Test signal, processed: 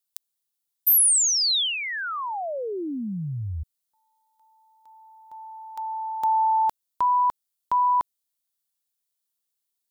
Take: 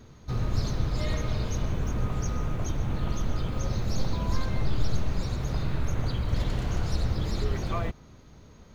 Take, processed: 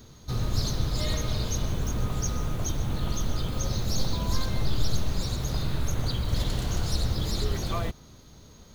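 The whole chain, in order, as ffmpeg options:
-af "aexciter=amount=3.2:drive=3:freq=3.3k"

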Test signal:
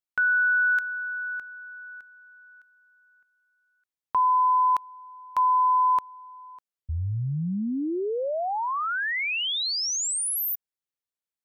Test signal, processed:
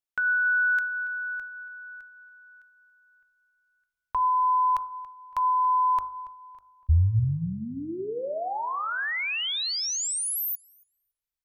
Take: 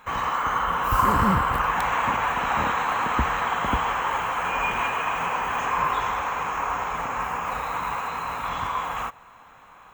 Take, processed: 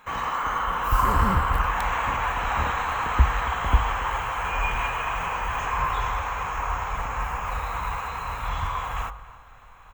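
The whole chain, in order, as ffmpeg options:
-filter_complex "[0:a]bandreject=f=50.84:t=h:w=4,bandreject=f=101.68:t=h:w=4,bandreject=f=152.52:t=h:w=4,bandreject=f=203.36:t=h:w=4,bandreject=f=254.2:t=h:w=4,bandreject=f=305.04:t=h:w=4,bandreject=f=355.88:t=h:w=4,bandreject=f=406.72:t=h:w=4,bandreject=f=457.56:t=h:w=4,bandreject=f=508.4:t=h:w=4,bandreject=f=559.24:t=h:w=4,bandreject=f=610.08:t=h:w=4,bandreject=f=660.92:t=h:w=4,bandreject=f=711.76:t=h:w=4,bandreject=f=762.6:t=h:w=4,bandreject=f=813.44:t=h:w=4,bandreject=f=864.28:t=h:w=4,bandreject=f=915.12:t=h:w=4,bandreject=f=965.96:t=h:w=4,bandreject=f=1.0168k:t=h:w=4,bandreject=f=1.06764k:t=h:w=4,bandreject=f=1.11848k:t=h:w=4,bandreject=f=1.16932k:t=h:w=4,bandreject=f=1.22016k:t=h:w=4,bandreject=f=1.271k:t=h:w=4,bandreject=f=1.32184k:t=h:w=4,bandreject=f=1.37268k:t=h:w=4,bandreject=f=1.42352k:t=h:w=4,bandreject=f=1.47436k:t=h:w=4,bandreject=f=1.5252k:t=h:w=4,asubboost=boost=10:cutoff=72,asplit=2[a][b];[b]adelay=281,lowpass=f=3.1k:p=1,volume=-17.5dB,asplit=2[c][d];[d]adelay=281,lowpass=f=3.1k:p=1,volume=0.37,asplit=2[e][f];[f]adelay=281,lowpass=f=3.1k:p=1,volume=0.37[g];[c][e][g]amix=inputs=3:normalize=0[h];[a][h]amix=inputs=2:normalize=0,volume=-1.5dB"

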